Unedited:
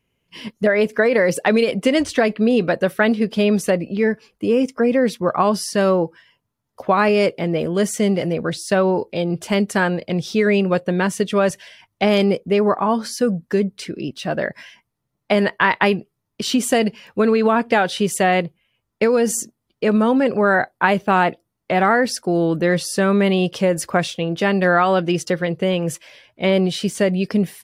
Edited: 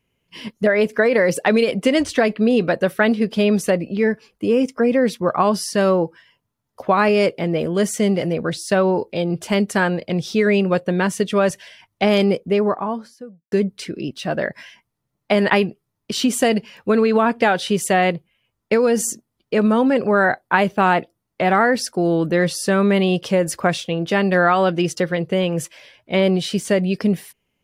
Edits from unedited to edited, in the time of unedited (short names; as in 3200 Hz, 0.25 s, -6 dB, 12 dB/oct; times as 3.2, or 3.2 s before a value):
12.34–13.52 studio fade out
15.5–15.8 cut